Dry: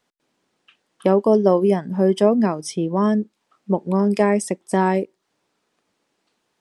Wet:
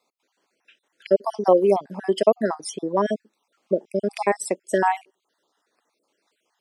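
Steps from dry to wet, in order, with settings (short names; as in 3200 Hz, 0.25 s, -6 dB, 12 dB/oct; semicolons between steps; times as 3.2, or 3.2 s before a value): random spectral dropouts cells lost 46%; HPF 350 Hz 12 dB/oct; dynamic EQ 670 Hz, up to +4 dB, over -36 dBFS, Q 2.3; gain +1.5 dB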